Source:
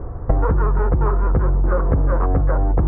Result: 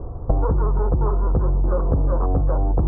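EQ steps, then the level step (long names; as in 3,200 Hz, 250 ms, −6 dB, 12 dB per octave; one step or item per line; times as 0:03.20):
low-pass filter 1,100 Hz 24 dB per octave
−2.0 dB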